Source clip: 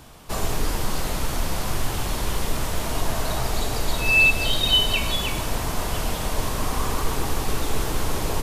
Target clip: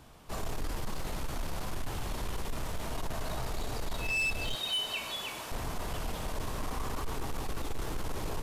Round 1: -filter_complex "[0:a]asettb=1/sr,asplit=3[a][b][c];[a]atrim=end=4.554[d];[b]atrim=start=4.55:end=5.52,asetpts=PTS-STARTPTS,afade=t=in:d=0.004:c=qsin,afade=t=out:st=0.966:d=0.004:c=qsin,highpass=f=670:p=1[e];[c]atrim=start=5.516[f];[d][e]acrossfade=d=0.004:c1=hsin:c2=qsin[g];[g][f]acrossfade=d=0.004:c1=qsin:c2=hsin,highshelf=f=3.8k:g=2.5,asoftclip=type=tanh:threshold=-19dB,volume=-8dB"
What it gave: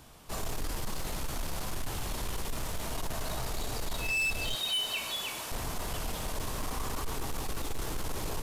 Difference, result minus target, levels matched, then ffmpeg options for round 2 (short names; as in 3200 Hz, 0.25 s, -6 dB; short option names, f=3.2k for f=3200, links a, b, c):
8000 Hz band +4.0 dB
-filter_complex "[0:a]asettb=1/sr,asplit=3[a][b][c];[a]atrim=end=4.554[d];[b]atrim=start=4.55:end=5.52,asetpts=PTS-STARTPTS,afade=t=in:d=0.004:c=qsin,afade=t=out:st=0.966:d=0.004:c=qsin,highpass=f=670:p=1[e];[c]atrim=start=5.516[f];[d][e]acrossfade=d=0.004:c1=hsin:c2=qsin[g];[g][f]acrossfade=d=0.004:c1=qsin:c2=hsin,highshelf=f=3.8k:g=-4.5,asoftclip=type=tanh:threshold=-19dB,volume=-8dB"